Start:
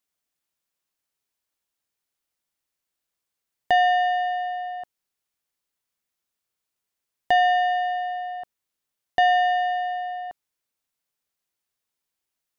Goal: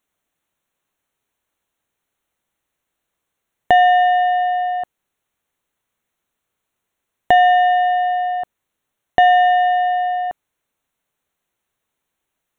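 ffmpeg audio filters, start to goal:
ffmpeg -i in.wav -filter_complex "[0:a]highshelf=frequency=3000:gain=-9,asplit=2[link_01][link_02];[link_02]acompressor=threshold=-28dB:ratio=6,volume=1.5dB[link_03];[link_01][link_03]amix=inputs=2:normalize=0,asuperstop=centerf=4900:order=4:qfactor=2.9,volume=5dB" out.wav

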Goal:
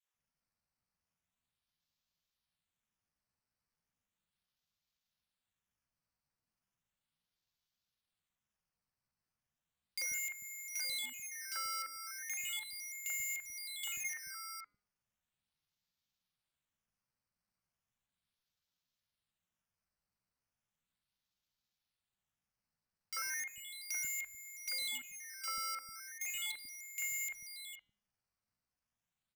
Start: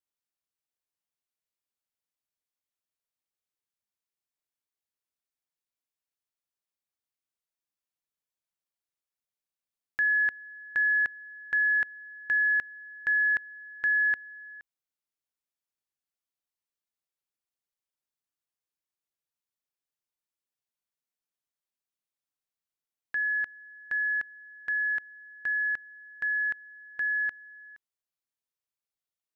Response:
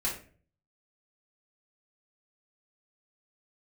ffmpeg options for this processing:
-filter_complex "[0:a]bandreject=frequency=1500:width=8.6,acrusher=samples=11:mix=1:aa=0.000001:lfo=1:lforange=11:lforate=0.36,firequalizer=gain_entry='entry(160,0);entry(240,-10);entry(2900,2)':delay=0.05:min_phase=1,alimiter=limit=-23.5dB:level=0:latency=1:release=11,acompressor=threshold=-37dB:ratio=3,acrusher=bits=7:mode=log:mix=0:aa=0.000001,bandreject=frequency=162.7:width_type=h:width=4,bandreject=frequency=325.4:width_type=h:width=4,bandreject=frequency=488.1:width_type=h:width=4,bandreject=frequency=650.8:width_type=h:width=4,bandreject=frequency=813.5:width_type=h:width=4,bandreject=frequency=976.2:width_type=h:width=4,bandreject=frequency=1138.9:width_type=h:width=4,bandreject=frequency=1301.6:width_type=h:width=4,bandreject=frequency=1464.3:width_type=h:width=4,bandreject=frequency=1627:width_type=h:width=4,bandreject=frequency=1789.7:width_type=h:width=4,bandreject=frequency=1952.4:width_type=h:width=4,bandreject=frequency=2115.1:width_type=h:width=4,bandreject=frequency=2277.8:width_type=h:width=4,bandreject=frequency=2440.5:width_type=h:width=4,bandreject=frequency=2603.2:width_type=h:width=4,bandreject=frequency=2765.9:width_type=h:width=4,bandreject=frequency=2928.6:width_type=h:width=4,bandreject=frequency=3091.3:width_type=h:width=4,bandreject=frequency=3254:width_type=h:width=4,bandreject=frequency=3416.7:width_type=h:width=4,bandreject=frequency=3579.4:width_type=h:width=4,bandreject=frequency=3742.1:width_type=h:width=4,asetrate=55563,aresample=44100,atempo=0.793701,asoftclip=type=hard:threshold=-36dB,acrossover=split=380|2300[link_01][link_02][link_03];[link_02]adelay=40[link_04];[link_01]adelay=140[link_05];[link_05][link_04][link_03]amix=inputs=3:normalize=0,volume=4dB"

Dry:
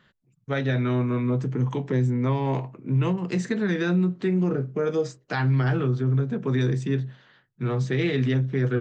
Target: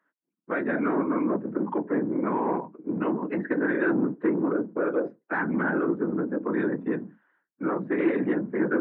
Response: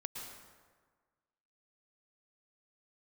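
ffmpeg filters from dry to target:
-filter_complex "[0:a]afftdn=noise_reduction=17:noise_floor=-38,acrossover=split=250|500|1400[link_01][link_02][link_03][link_04];[link_03]alimiter=level_in=5.5dB:limit=-24dB:level=0:latency=1:release=276,volume=-5.5dB[link_05];[link_01][link_02][link_05][link_04]amix=inputs=4:normalize=0,afftfilt=real='hypot(re,im)*cos(2*PI*random(0))':imag='hypot(re,im)*sin(2*PI*random(1))':win_size=512:overlap=0.75,asplit=2[link_06][link_07];[link_07]highpass=frequency=720:poles=1,volume=19dB,asoftclip=type=tanh:threshold=-16dB[link_08];[link_06][link_08]amix=inputs=2:normalize=0,lowpass=frequency=1100:poles=1,volume=-6dB,highpass=frequency=190:width=0.5412,highpass=frequency=190:width=1.3066,equalizer=frequency=310:width_type=q:width=4:gain=8,equalizer=frequency=990:width_type=q:width=4:gain=5,equalizer=frequency=1500:width_type=q:width=4:gain=7,lowpass=frequency=2300:width=0.5412,lowpass=frequency=2300:width=1.3066"

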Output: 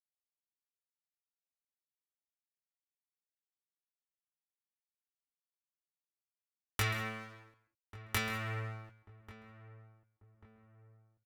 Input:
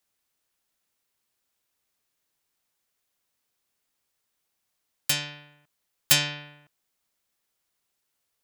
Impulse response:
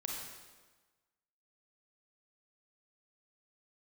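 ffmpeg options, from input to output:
-filter_complex "[0:a]acompressor=threshold=-31dB:ratio=5,equalizer=frequency=210:width=6.2:gain=-13,dynaudnorm=framelen=110:gausssize=11:maxgain=9dB,bass=frequency=250:gain=10,treble=frequency=4000:gain=-13,asetrate=33075,aresample=44100,flanger=delay=19.5:depth=2.7:speed=0.91,aeval=exprs='sgn(val(0))*max(abs(val(0))-0.00224,0)':channel_layout=same,asplit=2[link_01][link_02];[link_02]adelay=1140,lowpass=frequency=890:poles=1,volume=-15dB,asplit=2[link_03][link_04];[link_04]adelay=1140,lowpass=frequency=890:poles=1,volume=0.47,asplit=2[link_05][link_06];[link_06]adelay=1140,lowpass=frequency=890:poles=1,volume=0.47,asplit=2[link_07][link_08];[link_08]adelay=1140,lowpass=frequency=890:poles=1,volume=0.47[link_09];[link_01][link_03][link_05][link_07][link_09]amix=inputs=5:normalize=0,asplit=2[link_10][link_11];[1:a]atrim=start_sample=2205,atrim=end_sample=3528,adelay=133[link_12];[link_11][link_12]afir=irnorm=-1:irlink=0,volume=-12dB[link_13];[link_10][link_13]amix=inputs=2:normalize=0"

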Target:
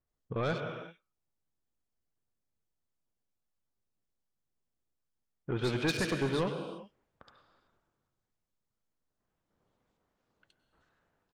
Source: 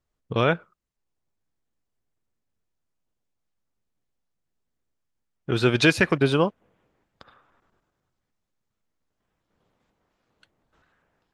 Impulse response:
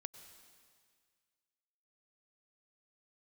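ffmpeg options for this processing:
-filter_complex "[1:a]atrim=start_sample=2205,afade=type=out:start_time=0.44:duration=0.01,atrim=end_sample=19845[link_01];[0:a][link_01]afir=irnorm=-1:irlink=0,asoftclip=type=tanh:threshold=-23.5dB,acrossover=split=2400[link_02][link_03];[link_03]adelay=70[link_04];[link_02][link_04]amix=inputs=2:normalize=0,volume=-1.5dB"

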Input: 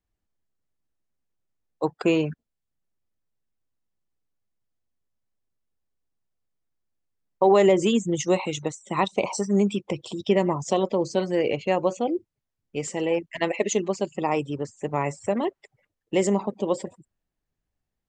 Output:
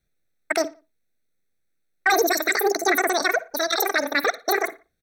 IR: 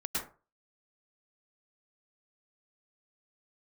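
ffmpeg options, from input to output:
-filter_complex "[0:a]lowshelf=frequency=230:gain=-8.5,bandreject=frequency=50:width_type=h:width=6,bandreject=frequency=100:width_type=h:width=6,bandreject=frequency=150:width_type=h:width=6,bandreject=frequency=200:width_type=h:width=6,aecho=1:1:1:0.92,acontrast=76,alimiter=limit=-10.5dB:level=0:latency=1:release=24,atempo=1.8,asplit=2[link_01][link_02];[link_02]adelay=116,lowpass=frequency=2300:poles=1,volume=-21.5dB,asplit=2[link_03][link_04];[link_04]adelay=116,lowpass=frequency=2300:poles=1,volume=0.45,asplit=2[link_05][link_06];[link_06]adelay=116,lowpass=frequency=2300:poles=1,volume=0.45[link_07];[link_01][link_03][link_05][link_07]amix=inputs=4:normalize=0,asplit=2[link_08][link_09];[1:a]atrim=start_sample=2205[link_10];[link_09][link_10]afir=irnorm=-1:irlink=0,volume=-22.5dB[link_11];[link_08][link_11]amix=inputs=2:normalize=0,asetrate=88200,aresample=44100"

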